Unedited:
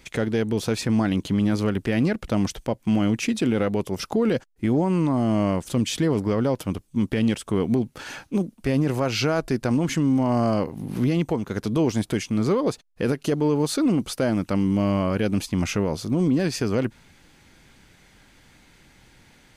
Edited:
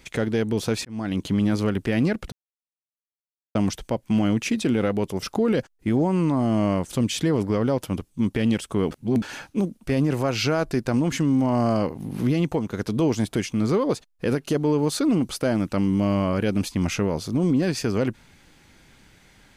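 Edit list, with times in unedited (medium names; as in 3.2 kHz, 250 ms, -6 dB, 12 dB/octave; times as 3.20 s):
0.85–1.24 s: fade in
2.32 s: insert silence 1.23 s
7.68–7.99 s: reverse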